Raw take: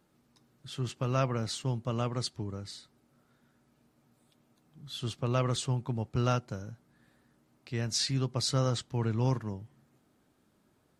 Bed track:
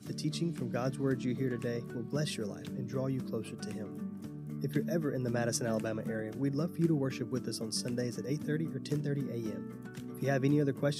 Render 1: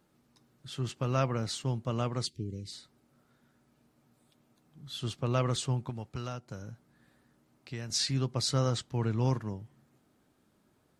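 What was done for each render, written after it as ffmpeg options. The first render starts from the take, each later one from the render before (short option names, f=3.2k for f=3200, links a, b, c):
-filter_complex "[0:a]asettb=1/sr,asplit=3[a][b][c];[a]atrim=end=2.264[d];[b]atrim=start=2.26:end=2.73,asetpts=PTS-STARTPTS,afade=t=in:d=0.004:c=qsin,afade=t=out:st=0.466:d=0.004:c=qsin,asuperstop=centerf=990:order=8:qfactor=0.58[e];[c]atrim=start=2.726[f];[d][e]acrossfade=d=0.004:c1=hsin:c2=qsin[g];[g][f]acrossfade=d=0.004:c1=qsin:c2=hsin,asettb=1/sr,asplit=3[h][i][j];[h]atrim=end=5.894[k];[i]atrim=start=5.89:end=7.9,asetpts=PTS-STARTPTS,afade=t=in:d=0.004:c=qsin,afade=t=out:st=2.006:d=0.004:c=qsin,acrossover=split=980|4900[l][m][n];[l]acompressor=threshold=-37dB:ratio=4[o];[m]acompressor=threshold=-46dB:ratio=4[p];[n]acompressor=threshold=-57dB:ratio=4[q];[o][p][q]amix=inputs=3:normalize=0[r];[j]atrim=start=7.896[s];[k][r]acrossfade=d=0.004:c1=hsin:c2=qsin[t];[t][s]acrossfade=d=0.004:c1=qsin:c2=hsin"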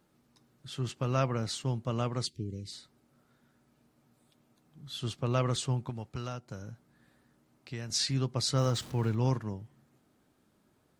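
-filter_complex "[0:a]asettb=1/sr,asplit=3[a][b][c];[a]atrim=end=8.584[d];[b]atrim=start=8.58:end=9.15,asetpts=PTS-STARTPTS,afade=t=in:d=0.004:c=qsin,afade=t=out:st=0.566:d=0.004:c=qsin,aeval=exprs='val(0)+0.5*0.00708*sgn(val(0))':c=same[e];[c]atrim=start=9.146[f];[d][e]acrossfade=d=0.004:c1=hsin:c2=qsin[g];[g][f]acrossfade=d=0.004:c1=qsin:c2=hsin"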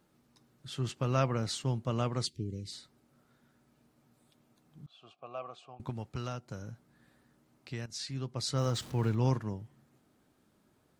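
-filter_complex "[0:a]asettb=1/sr,asplit=3[a][b][c];[a]atrim=end=4.864[d];[b]atrim=start=4.86:end=5.8,asetpts=PTS-STARTPTS,afade=t=in:d=0.004:c=qsin,afade=t=out:st=0.936:d=0.004:c=qsin,asplit=3[e][f][g];[e]bandpass=f=730:t=q:w=8,volume=0dB[h];[f]bandpass=f=1.09k:t=q:w=8,volume=-6dB[i];[g]bandpass=f=2.44k:t=q:w=8,volume=-9dB[j];[h][i][j]amix=inputs=3:normalize=0[k];[c]atrim=start=5.796[l];[d][k]acrossfade=d=0.004:c1=hsin:c2=qsin[m];[m][l]acrossfade=d=0.004:c1=qsin:c2=hsin,asplit=2[n][o];[n]atrim=end=7.86,asetpts=PTS-STARTPTS,afade=t=out:st=7.856:d=0.004:c=hsin:silence=0.223872[p];[o]atrim=start=7.86,asetpts=PTS-STARTPTS,afade=t=in:d=1.19:silence=0.223872[q];[p][q]concat=n=2:v=0:a=1"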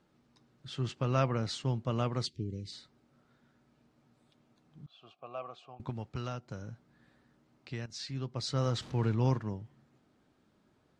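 -af "lowpass=5.6k"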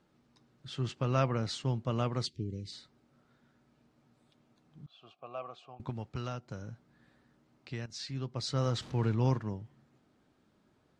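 -af anull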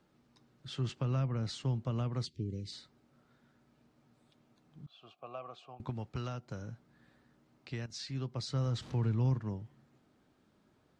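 -filter_complex "[0:a]acrossover=split=230[a][b];[b]acompressor=threshold=-39dB:ratio=10[c];[a][c]amix=inputs=2:normalize=0"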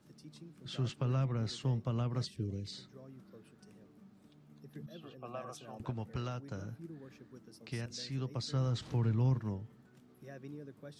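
-filter_complex "[1:a]volume=-19dB[a];[0:a][a]amix=inputs=2:normalize=0"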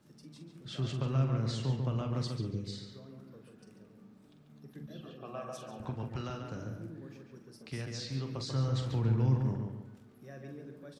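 -filter_complex "[0:a]asplit=2[a][b];[b]adelay=45,volume=-8dB[c];[a][c]amix=inputs=2:normalize=0,asplit=2[d][e];[e]adelay=141,lowpass=f=2.9k:p=1,volume=-4dB,asplit=2[f][g];[g]adelay=141,lowpass=f=2.9k:p=1,volume=0.4,asplit=2[h][i];[i]adelay=141,lowpass=f=2.9k:p=1,volume=0.4,asplit=2[j][k];[k]adelay=141,lowpass=f=2.9k:p=1,volume=0.4,asplit=2[l][m];[m]adelay=141,lowpass=f=2.9k:p=1,volume=0.4[n];[d][f][h][j][l][n]amix=inputs=6:normalize=0"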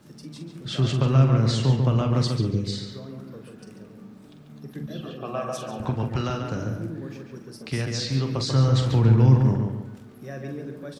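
-af "volume=12dB"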